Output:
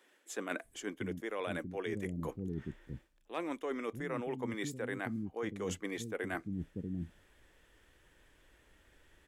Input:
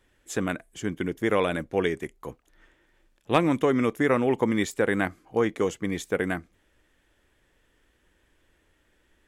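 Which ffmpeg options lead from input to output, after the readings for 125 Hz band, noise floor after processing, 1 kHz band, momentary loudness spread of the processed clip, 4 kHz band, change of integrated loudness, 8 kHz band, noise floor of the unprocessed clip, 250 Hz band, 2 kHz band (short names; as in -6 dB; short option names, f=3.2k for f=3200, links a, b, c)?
-8.5 dB, -68 dBFS, -13.5 dB, 6 LU, -10.5 dB, -13.5 dB, -7.5 dB, -68 dBFS, -12.0 dB, -11.0 dB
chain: -filter_complex "[0:a]acrossover=split=260[a][b];[a]adelay=640[c];[c][b]amix=inputs=2:normalize=0,areverse,acompressor=threshold=-36dB:ratio=12,areverse,volume=1.5dB"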